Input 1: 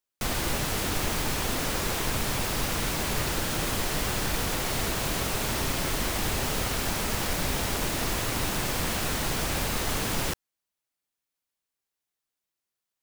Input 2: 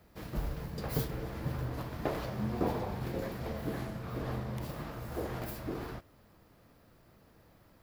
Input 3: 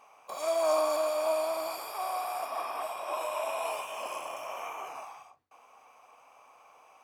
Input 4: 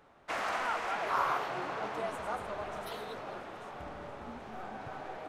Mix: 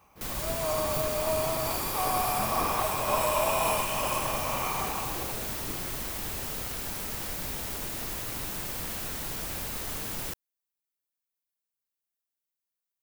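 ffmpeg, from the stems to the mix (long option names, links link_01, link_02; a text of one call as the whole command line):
ffmpeg -i stem1.wav -i stem2.wav -i stem3.wav -i stem4.wav -filter_complex "[0:a]volume=-9.5dB[link_01];[1:a]volume=-6.5dB[link_02];[2:a]bandreject=frequency=690:width=12,dynaudnorm=framelen=480:gausssize=7:maxgain=12dB,volume=-5dB[link_03];[3:a]acompressor=threshold=-37dB:ratio=6,acrusher=samples=34:mix=1:aa=0.000001:lfo=1:lforange=20.4:lforate=3.7,adelay=200,volume=-0.5dB[link_04];[link_01][link_02][link_03][link_04]amix=inputs=4:normalize=0,highshelf=frequency=11000:gain=12" out.wav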